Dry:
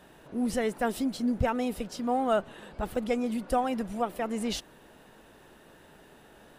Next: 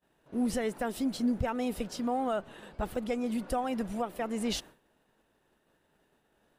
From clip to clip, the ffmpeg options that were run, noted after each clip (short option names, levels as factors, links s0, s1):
-af "agate=range=0.0224:threshold=0.00708:ratio=3:detection=peak,alimiter=limit=0.0891:level=0:latency=1:release=299"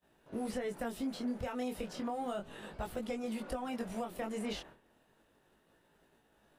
-filter_complex "[0:a]flanger=delay=17.5:depth=6.6:speed=0.33,acrossover=split=370|2900[s0][s1][s2];[s0]acompressor=threshold=0.00501:ratio=4[s3];[s1]acompressor=threshold=0.00631:ratio=4[s4];[s2]acompressor=threshold=0.00126:ratio=4[s5];[s3][s4][s5]amix=inputs=3:normalize=0,volume=1.68"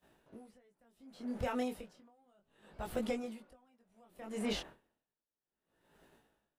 -af "aeval=exprs='val(0)*pow(10,-36*(0.5-0.5*cos(2*PI*0.66*n/s))/20)':c=same,volume=1.5"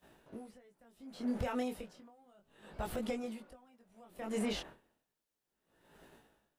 -af "alimiter=level_in=2.66:limit=0.0631:level=0:latency=1:release=410,volume=0.376,volume=1.88"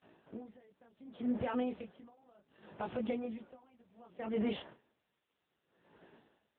-af "volume=1.26" -ar 8000 -c:a libopencore_amrnb -b:a 6700